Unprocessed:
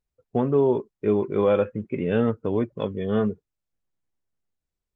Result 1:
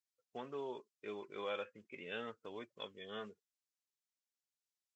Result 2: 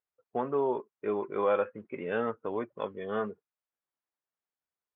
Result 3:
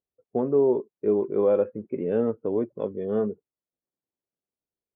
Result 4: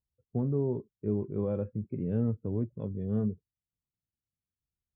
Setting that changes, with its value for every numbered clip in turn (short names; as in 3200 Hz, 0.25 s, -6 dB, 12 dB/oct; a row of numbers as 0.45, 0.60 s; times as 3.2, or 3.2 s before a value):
band-pass, frequency: 5900, 1200, 430, 100 Hz